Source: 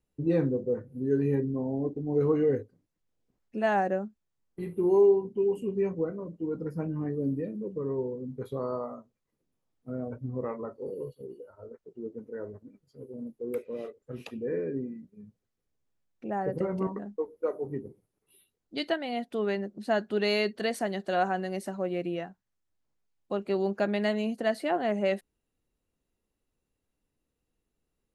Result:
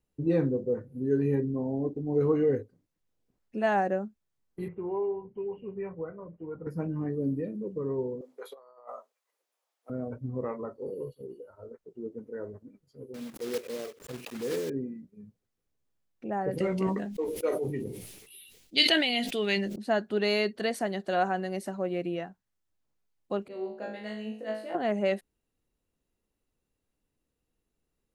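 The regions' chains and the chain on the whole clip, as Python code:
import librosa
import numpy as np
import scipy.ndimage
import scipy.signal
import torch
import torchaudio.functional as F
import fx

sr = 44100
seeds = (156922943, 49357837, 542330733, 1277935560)

y = fx.chain(x, sr, fx.lowpass(hz=2300.0, slope=24),
    fx.peak_eq(hz=270.0, db=-13.5, octaves=1.6),
    fx.band_squash(depth_pct=40), at=(4.68, 6.67))
y = fx.chain(y, sr, fx.highpass(hz=570.0, slope=24),
    fx.over_compress(threshold_db=-45.0, ratio=-0.5), at=(8.21, 9.9))
y = fx.chain(y, sr, fx.block_float(bits=3),
    fx.low_shelf(hz=78.0, db=-11.5),
    fx.pre_swell(db_per_s=150.0), at=(13.14, 14.7))
y = fx.chain(y, sr, fx.high_shelf_res(hz=1800.0, db=11.5, q=1.5),
    fx.doubler(ms=16.0, db=-12.5),
    fx.sustainer(db_per_s=47.0), at=(16.51, 19.76))
y = fx.chain(y, sr, fx.peak_eq(hz=500.0, db=12.5, octaves=0.2),
    fx.comb_fb(f0_hz=54.0, decay_s=0.58, harmonics='all', damping=0.0, mix_pct=100),
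    fx.band_widen(depth_pct=40), at=(23.48, 24.75))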